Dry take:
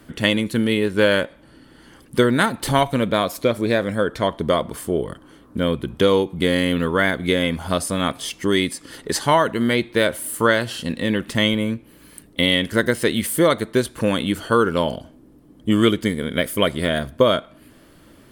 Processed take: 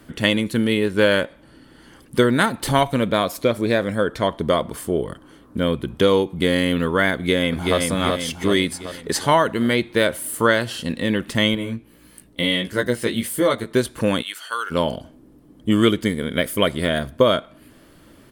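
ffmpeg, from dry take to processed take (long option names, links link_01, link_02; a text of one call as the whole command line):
ffmpeg -i in.wav -filter_complex "[0:a]asplit=2[link_01][link_02];[link_02]afade=type=in:start_time=7.14:duration=0.01,afade=type=out:start_time=7.78:duration=0.01,aecho=0:1:380|760|1140|1520|1900|2280|2660|3040:0.707946|0.38937|0.214154|0.117784|0.0647815|0.0356298|0.0195964|0.010778[link_03];[link_01][link_03]amix=inputs=2:normalize=0,asettb=1/sr,asplit=3[link_04][link_05][link_06];[link_04]atrim=end=11.554[link_07];[link_05]atrim=start=11.55:end=13.71,asetpts=PTS-STARTPTS,afade=type=in:duration=0.004:curve=qsin,afade=type=out:start_time=2.156:duration=0.004:curve=qsin,flanger=delay=15.5:depth=2.2:speed=1.6[link_08];[link_06]atrim=start=13.706[link_09];[link_07][link_08]acrossfade=duration=0.004:curve1=hsin:curve2=qsin[link_10];[link_10][link_09]acrossfade=duration=0.004:curve1=qsin:curve2=hsin,asplit=3[link_11][link_12][link_13];[link_11]afade=type=out:start_time=14.21:duration=0.02[link_14];[link_12]highpass=1500,afade=type=in:start_time=14.21:duration=0.02,afade=type=out:start_time=14.7:duration=0.02[link_15];[link_13]afade=type=in:start_time=14.7:duration=0.02[link_16];[link_14][link_15][link_16]amix=inputs=3:normalize=0" out.wav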